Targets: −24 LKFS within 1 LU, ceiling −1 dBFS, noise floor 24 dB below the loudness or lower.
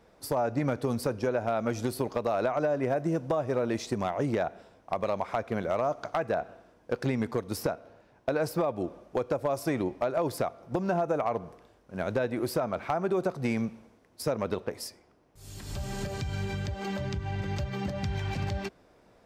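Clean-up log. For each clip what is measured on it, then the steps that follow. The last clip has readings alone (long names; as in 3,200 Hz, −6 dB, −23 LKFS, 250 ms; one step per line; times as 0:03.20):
share of clipped samples 0.2%; peaks flattened at −19.0 dBFS; integrated loudness −31.0 LKFS; sample peak −19.0 dBFS; target loudness −24.0 LKFS
→ clipped peaks rebuilt −19 dBFS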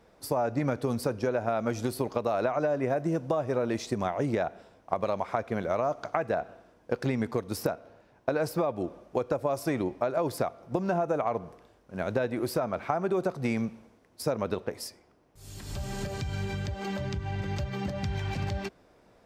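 share of clipped samples 0.0%; integrated loudness −31.0 LKFS; sample peak −10.0 dBFS; target loudness −24.0 LKFS
→ level +7 dB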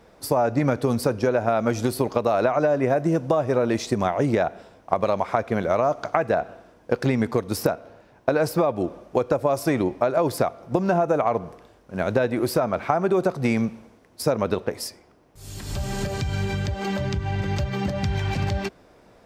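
integrated loudness −24.0 LKFS; sample peak −3.0 dBFS; background noise floor −55 dBFS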